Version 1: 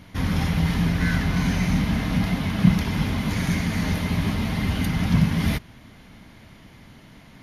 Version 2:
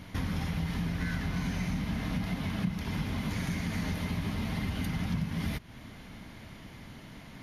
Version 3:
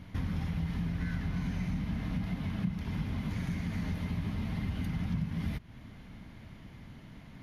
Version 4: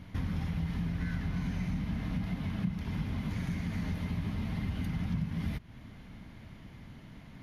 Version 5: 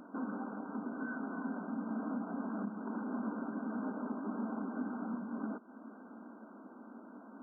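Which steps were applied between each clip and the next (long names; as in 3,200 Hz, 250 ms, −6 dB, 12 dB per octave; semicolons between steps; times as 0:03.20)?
downward compressor 4 to 1, threshold −31 dBFS, peak gain reduction 17 dB
bass and treble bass +6 dB, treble −5 dB; level −6 dB
no processing that can be heard
linear-phase brick-wall band-pass 210–1,600 Hz; level +5 dB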